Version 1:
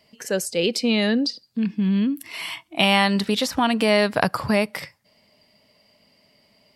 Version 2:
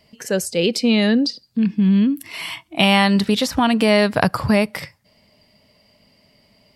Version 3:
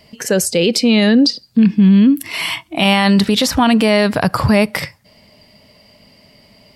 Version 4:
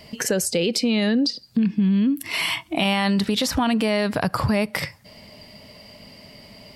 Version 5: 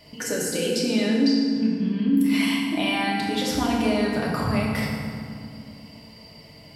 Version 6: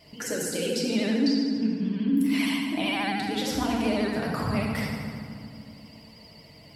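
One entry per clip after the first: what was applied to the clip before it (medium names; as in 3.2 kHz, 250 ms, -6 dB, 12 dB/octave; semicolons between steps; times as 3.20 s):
bass shelf 140 Hz +10.5 dB; trim +2 dB
peak limiter -13 dBFS, peak gain reduction 11 dB; trim +8.5 dB
compression 2.5:1, threshold -27 dBFS, peak gain reduction 13 dB; trim +3 dB
FDN reverb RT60 2.2 s, low-frequency decay 1.55×, high-frequency decay 0.6×, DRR -4.5 dB; trim -8 dB
vibrato 13 Hz 72 cents; trim -3.5 dB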